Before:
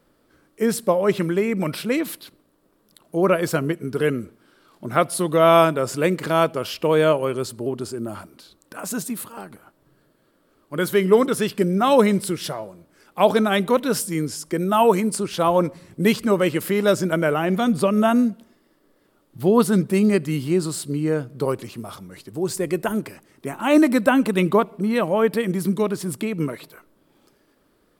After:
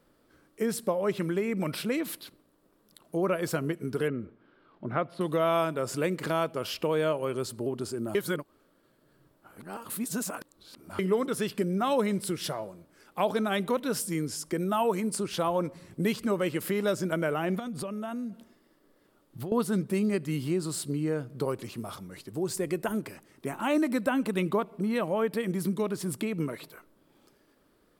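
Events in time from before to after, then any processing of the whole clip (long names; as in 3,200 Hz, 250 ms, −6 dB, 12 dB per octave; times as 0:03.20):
0:04.08–0:05.21: high-frequency loss of the air 380 metres
0:08.15–0:10.99: reverse
0:17.59–0:19.52: downward compressor 12 to 1, threshold −28 dBFS
whole clip: downward compressor 2 to 1, threshold −25 dBFS; level −3.5 dB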